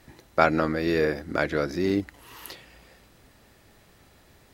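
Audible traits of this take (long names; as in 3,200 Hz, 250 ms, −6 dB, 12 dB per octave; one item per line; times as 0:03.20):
background noise floor −57 dBFS
spectral slope −4.5 dB per octave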